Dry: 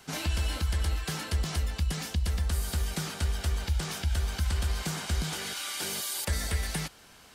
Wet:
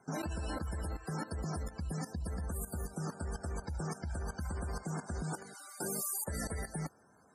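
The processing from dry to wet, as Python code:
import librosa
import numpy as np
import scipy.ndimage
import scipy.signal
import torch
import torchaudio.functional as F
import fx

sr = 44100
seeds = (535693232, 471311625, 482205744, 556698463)

y = scipy.signal.sosfilt(scipy.signal.butter(2, 110.0, 'highpass', fs=sr, output='sos'), x)
y = fx.peak_eq(y, sr, hz=3100.0, db=-14.5, octaves=1.4)
y = fx.spec_topn(y, sr, count=64)
y = fx.level_steps(y, sr, step_db=14)
y = F.gain(torch.from_numpy(y), 5.0).numpy()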